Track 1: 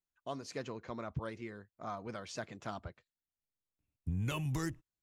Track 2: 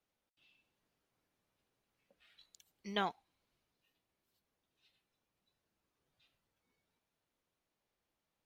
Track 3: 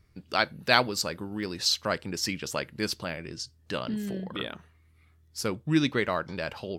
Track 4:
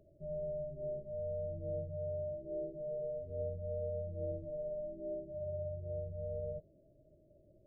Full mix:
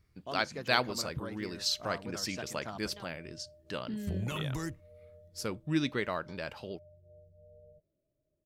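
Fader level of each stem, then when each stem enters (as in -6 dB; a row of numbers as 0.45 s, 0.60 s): -0.5 dB, -16.5 dB, -6.0 dB, -17.0 dB; 0.00 s, 0.00 s, 0.00 s, 1.20 s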